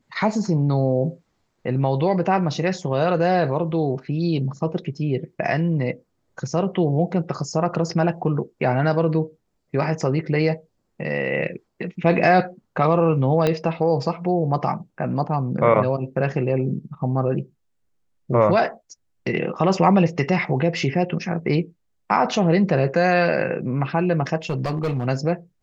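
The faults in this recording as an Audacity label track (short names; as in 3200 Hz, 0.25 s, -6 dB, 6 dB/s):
13.470000	13.470000	pop -8 dBFS
24.500000	25.070000	clipped -19 dBFS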